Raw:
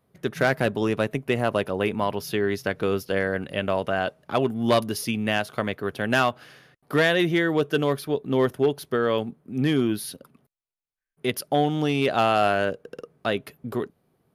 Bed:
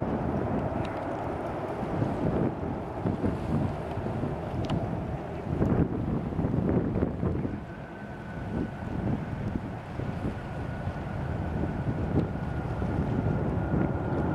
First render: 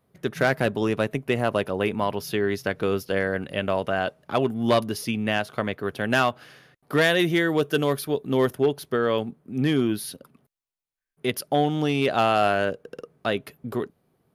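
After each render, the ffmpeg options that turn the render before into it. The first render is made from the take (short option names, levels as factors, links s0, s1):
-filter_complex "[0:a]asettb=1/sr,asplit=3[s0][s1][s2];[s0]atrim=end=4.724[s3];[s1]atrim=start=4.72:end=5.8,asetpts=PTS-STARTPTS,afade=t=in:d=0.004:c=qsin,afade=t=out:st=1.076:d=0.004:c=qsin,highshelf=f=5200:g=-4[s4];[s2]atrim=start=5.796[s5];[s3][s4]acrossfade=d=0.004:c1=hsin:c2=qsin[s6];[s6][s5]acrossfade=d=0.004:c1=qsin:c2=hsin,asettb=1/sr,asplit=3[s7][s8][s9];[s7]atrim=end=7.014[s10];[s8]atrim=start=7.01:end=8.55,asetpts=PTS-STARTPTS,afade=t=in:d=0.004:c=qsin,afade=t=out:st=1.536:d=0.004:c=qsin,highshelf=f=6400:g=8[s11];[s9]atrim=start=8.546[s12];[s10][s11]acrossfade=d=0.004:c1=hsin:c2=qsin[s13];[s13][s12]acrossfade=d=0.004:c1=qsin:c2=hsin"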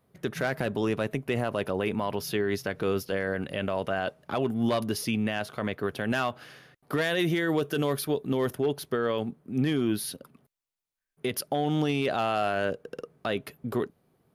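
-af "alimiter=limit=0.133:level=0:latency=1:release=35"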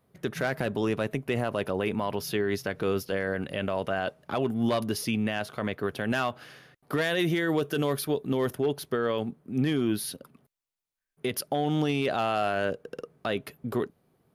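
-af anull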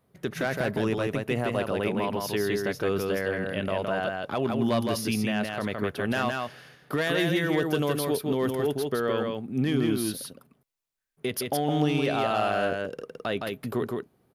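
-af "aecho=1:1:164:0.668"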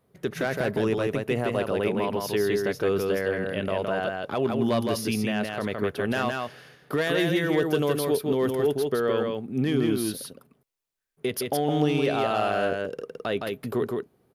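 -af "equalizer=f=430:t=o:w=0.57:g=4"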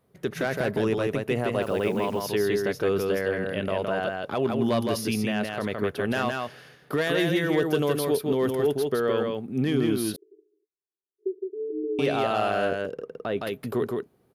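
-filter_complex "[0:a]asettb=1/sr,asplit=3[s0][s1][s2];[s0]atrim=end=1.624[s3];[s1]atrim=start=1.62:end=2.28,asetpts=PTS-STARTPTS,afade=t=in:d=0.004:c=qsin,afade=t=out:st=0.656:d=0.004:c=qsin,acrusher=bits=9:dc=4:mix=0:aa=0.000001[s4];[s2]atrim=start=2.276[s5];[s3][s4]acrossfade=d=0.004:c1=hsin:c2=qsin[s6];[s6][s5]acrossfade=d=0.004:c1=qsin:c2=hsin,asettb=1/sr,asplit=3[s7][s8][s9];[s7]atrim=end=10.164[s10];[s8]atrim=start=10.16:end=11.99,asetpts=PTS-STARTPTS,afade=t=in:d=0.004:c=qsin,afade=t=out:st=1.826:d=0.004:c=qsin,asuperpass=centerf=370:order=20:qfactor=2.8[s11];[s9]atrim=start=11.986[s12];[s10][s11]acrossfade=d=0.004:c1=hsin:c2=qsin[s13];[s13][s12]acrossfade=d=0.004:c1=qsin:c2=hsin,asettb=1/sr,asplit=3[s14][s15][s16];[s14]atrim=end=12.914[s17];[s15]atrim=start=12.91:end=13.38,asetpts=PTS-STARTPTS,afade=t=in:d=0.004:c=qsin,afade=t=out:st=0.466:d=0.004:c=qsin,highshelf=f=2700:g=-11.5[s18];[s16]atrim=start=13.376[s19];[s17][s18]acrossfade=d=0.004:c1=hsin:c2=qsin[s20];[s20][s19]acrossfade=d=0.004:c1=qsin:c2=hsin"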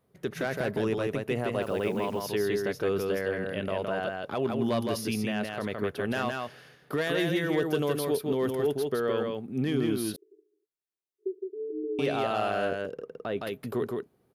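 -af "volume=0.668"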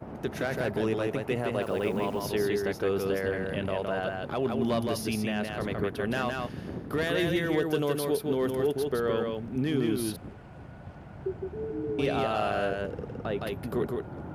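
-filter_complex "[1:a]volume=0.266[s0];[0:a][s0]amix=inputs=2:normalize=0"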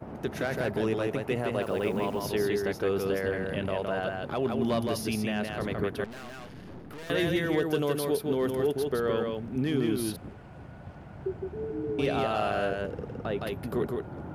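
-filter_complex "[0:a]asettb=1/sr,asplit=3[s0][s1][s2];[s0]atrim=end=6.044[s3];[s1]atrim=start=6.04:end=7.1,asetpts=PTS-STARTPTS,afade=t=in:d=0.004:c=qsin,afade=t=out:st=1.056:d=0.004:c=qsin,aeval=exprs='(tanh(112*val(0)+0.65)-tanh(0.65))/112':c=same[s4];[s2]atrim=start=7.096[s5];[s3][s4]acrossfade=d=0.004:c1=hsin:c2=qsin[s6];[s6][s5]acrossfade=d=0.004:c1=qsin:c2=hsin"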